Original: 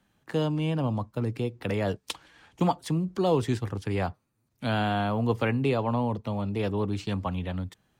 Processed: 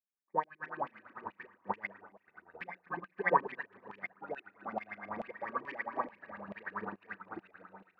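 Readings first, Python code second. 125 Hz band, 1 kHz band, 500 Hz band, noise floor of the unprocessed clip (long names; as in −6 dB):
−28.5 dB, −4.0 dB, −12.5 dB, −73 dBFS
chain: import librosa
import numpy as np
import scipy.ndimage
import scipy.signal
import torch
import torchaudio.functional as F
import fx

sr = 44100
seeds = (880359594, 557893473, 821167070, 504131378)

p1 = fx.bit_reversed(x, sr, seeds[0], block=32)
p2 = fx.low_shelf(p1, sr, hz=340.0, db=4.5)
p3 = fx.room_shoebox(p2, sr, seeds[1], volume_m3=830.0, walls='furnished', distance_m=1.1)
p4 = fx.echo_pitch(p3, sr, ms=196, semitones=-4, count=2, db_per_echo=-6.0)
p5 = fx.hum_notches(p4, sr, base_hz=60, count=5)
p6 = fx.filter_lfo_lowpass(p5, sr, shape='saw_up', hz=9.1, low_hz=260.0, high_hz=3100.0, q=6.7)
p7 = fx.graphic_eq_31(p6, sr, hz=(125, 200, 3150), db=(-9, 8, -10))
p8 = p7 + fx.echo_feedback(p7, sr, ms=254, feedback_pct=46, wet_db=-9.5, dry=0)
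p9 = fx.filter_lfo_bandpass(p8, sr, shape='saw_down', hz=2.3, low_hz=860.0, high_hz=2700.0, q=2.0)
p10 = fx.upward_expand(p9, sr, threshold_db=-44.0, expansion=2.5)
y = p10 * librosa.db_to_amplitude(2.5)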